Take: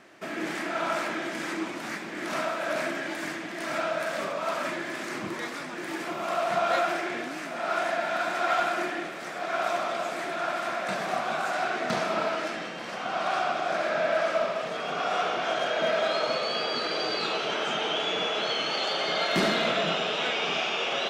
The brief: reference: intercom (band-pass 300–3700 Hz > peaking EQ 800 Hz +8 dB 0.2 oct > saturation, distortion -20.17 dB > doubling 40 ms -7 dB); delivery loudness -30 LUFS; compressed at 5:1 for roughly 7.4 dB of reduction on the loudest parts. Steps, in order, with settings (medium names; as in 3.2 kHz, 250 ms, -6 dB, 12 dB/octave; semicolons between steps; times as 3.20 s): compression 5:1, threshold -30 dBFS; band-pass 300–3700 Hz; peaking EQ 800 Hz +8 dB 0.2 oct; saturation -25 dBFS; doubling 40 ms -7 dB; trim +3 dB